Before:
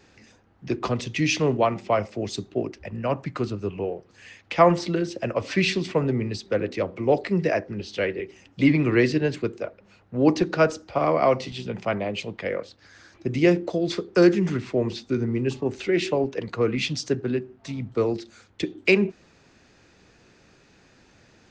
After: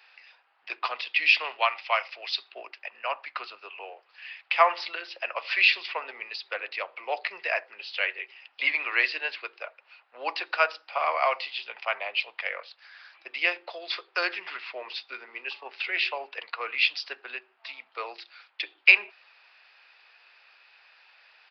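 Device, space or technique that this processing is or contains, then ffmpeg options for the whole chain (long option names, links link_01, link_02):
musical greeting card: -filter_complex "[0:a]asettb=1/sr,asplit=3[link_01][link_02][link_03];[link_01]atrim=end=1.444[link_04];[link_02]atrim=start=1.44:end=2.52,asetpts=PTS-STARTPTS,afade=type=in:duration=0.004:curve=qsin,afade=type=out:start_time=1.076:duration=0.004:curve=qsin,tiltshelf=frequency=940:gain=-6[link_05];[link_03]atrim=start=2.516[link_06];[link_04][link_05]acrossfade=duration=0.004:curve1=hsin:curve2=qsin[link_07];[link_07][link_06]acrossfade=duration=0.004:curve1=qsin:curve2=hsin,aresample=11025,aresample=44100,highpass=frequency=800:width=0.5412,highpass=frequency=800:width=1.3066,equalizer=frequency=2600:width_type=o:width=0.45:gain=7,volume=1dB"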